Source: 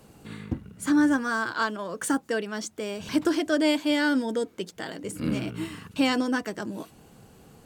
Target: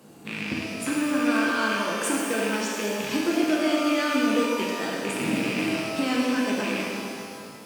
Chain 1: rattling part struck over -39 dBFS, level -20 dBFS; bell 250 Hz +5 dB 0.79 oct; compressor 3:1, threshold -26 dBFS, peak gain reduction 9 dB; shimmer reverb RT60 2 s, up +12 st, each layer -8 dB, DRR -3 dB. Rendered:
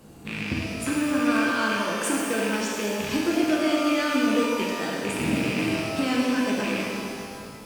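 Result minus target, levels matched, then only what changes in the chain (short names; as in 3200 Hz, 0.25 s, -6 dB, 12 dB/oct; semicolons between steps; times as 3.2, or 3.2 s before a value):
125 Hz band +3.5 dB
add after compressor: HPF 170 Hz 12 dB/oct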